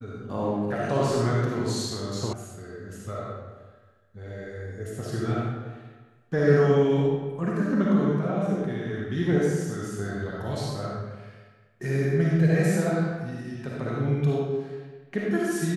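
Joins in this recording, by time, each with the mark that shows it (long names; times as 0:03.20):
0:02.33: cut off before it has died away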